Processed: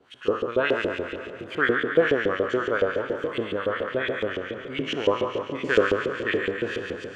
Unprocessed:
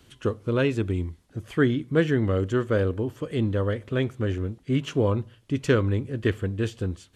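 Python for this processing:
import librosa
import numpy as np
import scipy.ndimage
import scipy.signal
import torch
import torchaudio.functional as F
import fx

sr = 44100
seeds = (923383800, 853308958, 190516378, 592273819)

y = fx.spec_trails(x, sr, decay_s=1.88)
y = fx.filter_lfo_bandpass(y, sr, shape='saw_up', hz=7.1, low_hz=410.0, high_hz=3500.0, q=1.8)
y = fx.echo_split(y, sr, split_hz=960.0, low_ms=314, high_ms=454, feedback_pct=52, wet_db=-14.5)
y = y * 10.0 ** (5.0 / 20.0)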